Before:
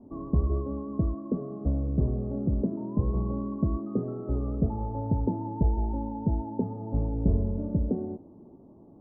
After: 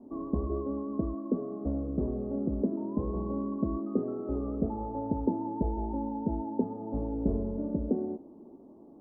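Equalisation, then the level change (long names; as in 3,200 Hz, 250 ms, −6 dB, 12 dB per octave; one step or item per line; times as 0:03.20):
parametric band 110 Hz −4.5 dB 0.98 octaves
low shelf with overshoot 190 Hz −7 dB, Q 1.5
0.0 dB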